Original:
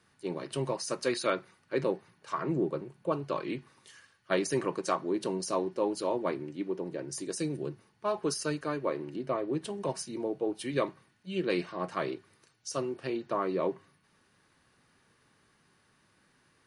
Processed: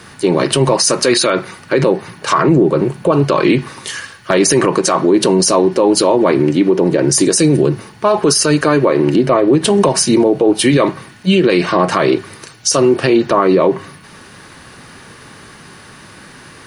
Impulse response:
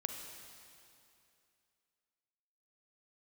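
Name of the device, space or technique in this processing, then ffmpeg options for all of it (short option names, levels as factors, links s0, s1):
loud club master: -af "acompressor=threshold=0.02:ratio=2,asoftclip=type=hard:threshold=0.0891,alimiter=level_in=37.6:limit=0.891:release=50:level=0:latency=1,volume=0.794"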